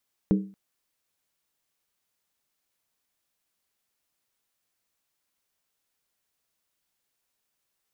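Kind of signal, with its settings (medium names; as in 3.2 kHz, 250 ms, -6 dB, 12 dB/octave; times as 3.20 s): skin hit length 0.23 s, lowest mode 195 Hz, decay 0.39 s, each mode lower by 6 dB, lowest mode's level -15.5 dB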